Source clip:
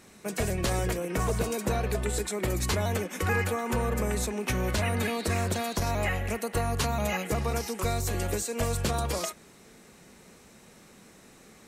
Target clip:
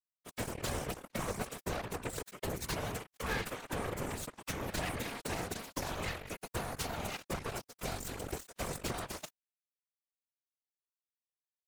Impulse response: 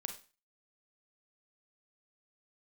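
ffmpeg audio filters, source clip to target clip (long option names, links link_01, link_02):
-af "acrusher=bits=3:mix=0:aa=0.5,acompressor=mode=upward:threshold=-47dB:ratio=2.5,afftfilt=real='hypot(re,im)*cos(2*PI*random(0))':imag='hypot(re,im)*sin(2*PI*random(1))':win_size=512:overlap=0.75,volume=-3dB"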